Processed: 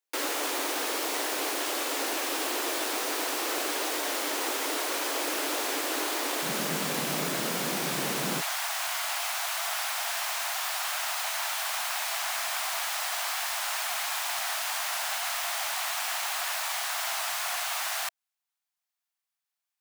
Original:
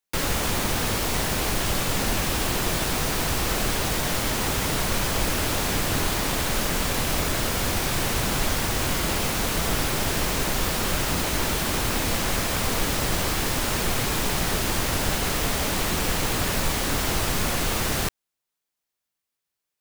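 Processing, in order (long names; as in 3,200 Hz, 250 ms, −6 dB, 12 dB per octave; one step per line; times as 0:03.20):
elliptic high-pass filter 290 Hz, stop band 40 dB, from 0:06.42 150 Hz, from 0:08.40 680 Hz
level −3 dB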